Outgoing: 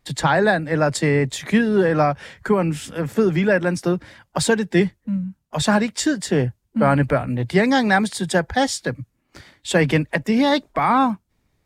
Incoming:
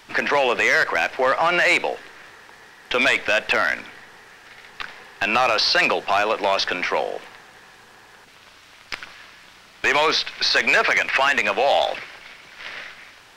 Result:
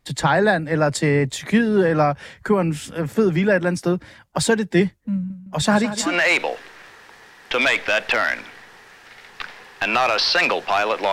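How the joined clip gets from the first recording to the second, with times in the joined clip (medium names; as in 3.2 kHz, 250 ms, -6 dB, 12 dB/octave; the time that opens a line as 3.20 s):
outgoing
5.14–6.17 s: feedback delay 161 ms, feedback 52%, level -12.5 dB
6.09 s: go over to incoming from 1.49 s, crossfade 0.16 s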